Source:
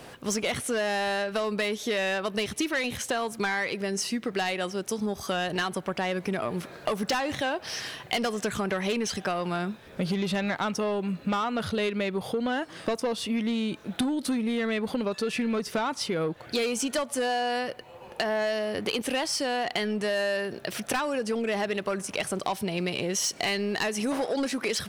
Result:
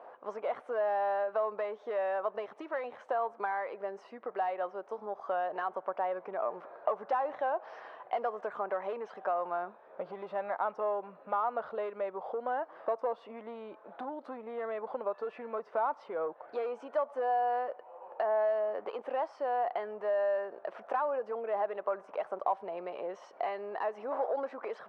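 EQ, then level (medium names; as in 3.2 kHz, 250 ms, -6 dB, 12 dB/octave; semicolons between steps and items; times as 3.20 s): Butterworth band-pass 790 Hz, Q 1.2; 0.0 dB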